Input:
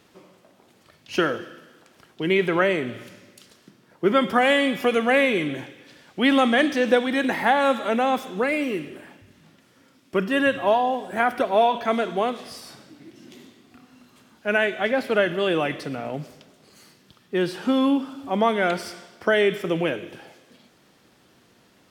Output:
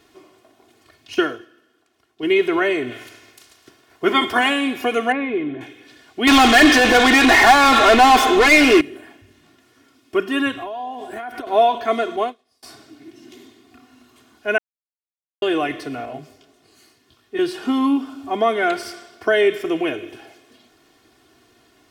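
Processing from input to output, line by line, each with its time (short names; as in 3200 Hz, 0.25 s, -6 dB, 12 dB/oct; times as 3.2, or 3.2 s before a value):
1.14–2.23 upward expander, over -42 dBFS
2.9–4.48 spectral limiter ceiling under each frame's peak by 13 dB
5.12–5.61 tape spacing loss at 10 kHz 43 dB
6.27–8.81 overdrive pedal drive 31 dB, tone 4200 Hz, clips at -6.5 dBFS
10.51–11.47 compressor 16:1, threshold -28 dBFS
12.16–12.63 upward expander 2.5:1, over -41 dBFS
14.58–15.42 mute
16.05–17.39 detuned doubles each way 57 cents
whole clip: comb 2.8 ms, depth 81%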